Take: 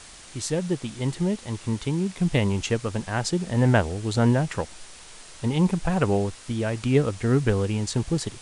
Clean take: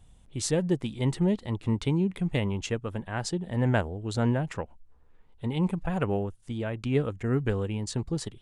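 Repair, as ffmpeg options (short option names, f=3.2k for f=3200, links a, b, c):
-af "afwtdn=0.0071,asetnsamples=n=441:p=0,asendcmd='2.2 volume volume -5.5dB',volume=0dB"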